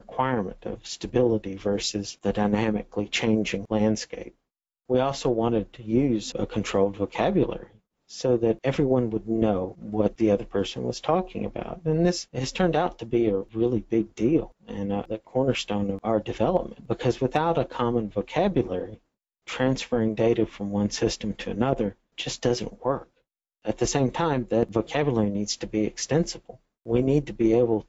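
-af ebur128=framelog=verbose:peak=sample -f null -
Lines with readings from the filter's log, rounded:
Integrated loudness:
  I:         -25.9 LUFS
  Threshold: -36.2 LUFS
Loudness range:
  LRA:         1.5 LU
  Threshold: -46.3 LUFS
  LRA low:   -27.0 LUFS
  LRA high:  -25.5 LUFS
Sample peak:
  Peak:       -8.9 dBFS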